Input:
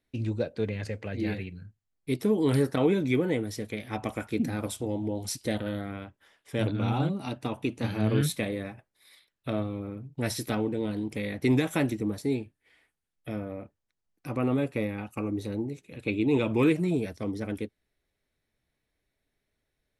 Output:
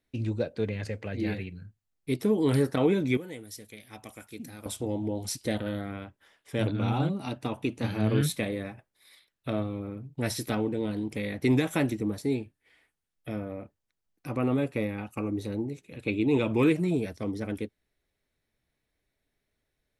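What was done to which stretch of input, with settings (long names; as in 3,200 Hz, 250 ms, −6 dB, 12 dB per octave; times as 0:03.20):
0:03.17–0:04.66: first-order pre-emphasis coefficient 0.8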